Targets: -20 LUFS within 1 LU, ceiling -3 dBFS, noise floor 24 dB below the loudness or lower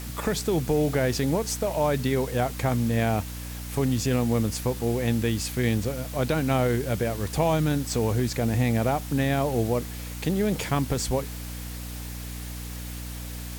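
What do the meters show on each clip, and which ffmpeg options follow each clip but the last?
hum 60 Hz; highest harmonic 300 Hz; hum level -35 dBFS; noise floor -36 dBFS; noise floor target -51 dBFS; loudness -26.5 LUFS; peak level -10.0 dBFS; loudness target -20.0 LUFS
-> -af "bandreject=f=60:t=h:w=6,bandreject=f=120:t=h:w=6,bandreject=f=180:t=h:w=6,bandreject=f=240:t=h:w=6,bandreject=f=300:t=h:w=6"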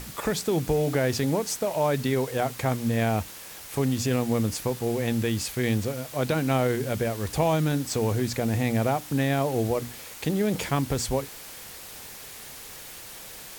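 hum not found; noise floor -42 dBFS; noise floor target -51 dBFS
-> -af "afftdn=nr=9:nf=-42"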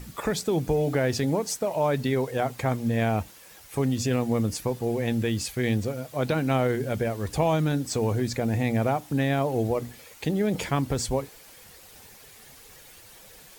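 noise floor -50 dBFS; noise floor target -51 dBFS
-> -af "afftdn=nr=6:nf=-50"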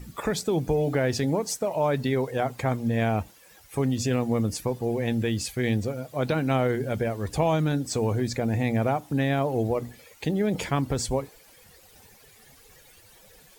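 noise floor -54 dBFS; loudness -26.5 LUFS; peak level -10.5 dBFS; loudness target -20.0 LUFS
-> -af "volume=2.11"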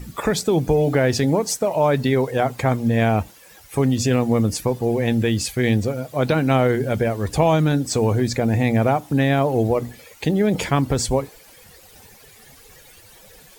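loudness -20.0 LUFS; peak level -4.0 dBFS; noise floor -48 dBFS

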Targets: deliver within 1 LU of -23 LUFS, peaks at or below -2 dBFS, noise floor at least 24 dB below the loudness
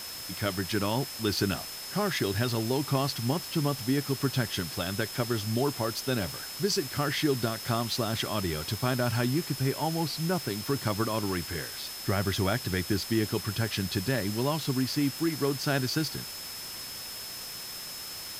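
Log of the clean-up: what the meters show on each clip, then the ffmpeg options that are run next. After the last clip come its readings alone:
steady tone 5.2 kHz; tone level -41 dBFS; noise floor -40 dBFS; noise floor target -54 dBFS; loudness -30.0 LUFS; peak level -14.0 dBFS; loudness target -23.0 LUFS
-> -af "bandreject=f=5200:w=30"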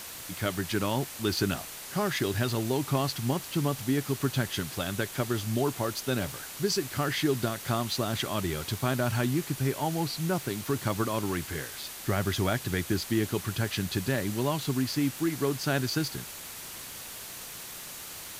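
steady tone not found; noise floor -42 dBFS; noise floor target -55 dBFS
-> -af "afftdn=nr=13:nf=-42"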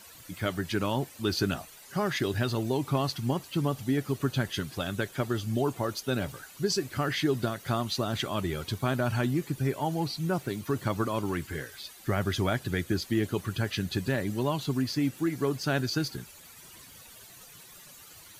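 noise floor -51 dBFS; noise floor target -55 dBFS
-> -af "afftdn=nr=6:nf=-51"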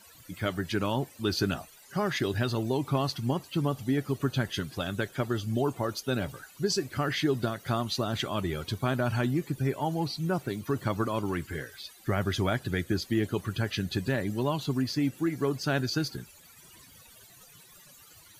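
noise floor -55 dBFS; loudness -30.5 LUFS; peak level -14.5 dBFS; loudness target -23.0 LUFS
-> -af "volume=2.37"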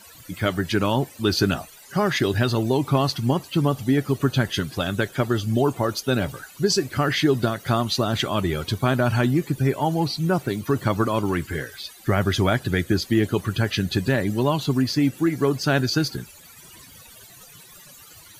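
loudness -23.0 LUFS; peak level -7.0 dBFS; noise floor -47 dBFS

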